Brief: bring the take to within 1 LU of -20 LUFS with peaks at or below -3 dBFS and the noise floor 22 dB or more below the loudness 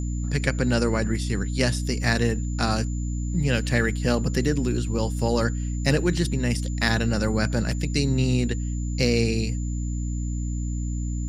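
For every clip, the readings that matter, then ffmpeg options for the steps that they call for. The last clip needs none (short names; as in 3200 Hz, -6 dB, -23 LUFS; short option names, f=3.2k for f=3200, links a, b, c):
hum 60 Hz; harmonics up to 300 Hz; hum level -25 dBFS; steady tone 7100 Hz; tone level -43 dBFS; loudness -25.0 LUFS; peak -4.5 dBFS; loudness target -20.0 LUFS
-> -af "bandreject=f=60:t=h:w=4,bandreject=f=120:t=h:w=4,bandreject=f=180:t=h:w=4,bandreject=f=240:t=h:w=4,bandreject=f=300:t=h:w=4"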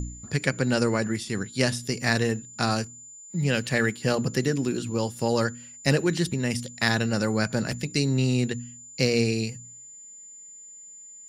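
hum none; steady tone 7100 Hz; tone level -43 dBFS
-> -af "bandreject=f=7.1k:w=30"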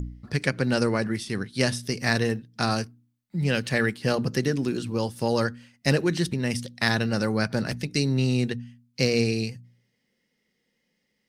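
steady tone none; loudness -26.0 LUFS; peak -4.5 dBFS; loudness target -20.0 LUFS
-> -af "volume=6dB,alimiter=limit=-3dB:level=0:latency=1"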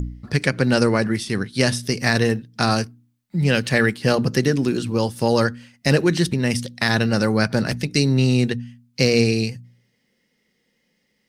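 loudness -20.5 LUFS; peak -3.0 dBFS; noise floor -69 dBFS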